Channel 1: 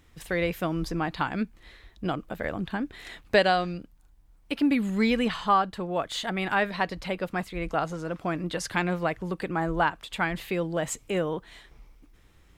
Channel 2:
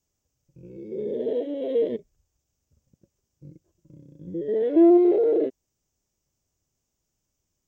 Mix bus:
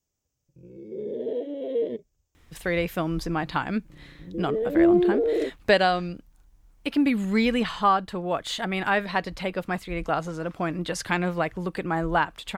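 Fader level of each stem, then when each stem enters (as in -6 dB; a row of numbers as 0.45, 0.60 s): +1.5, -3.0 dB; 2.35, 0.00 s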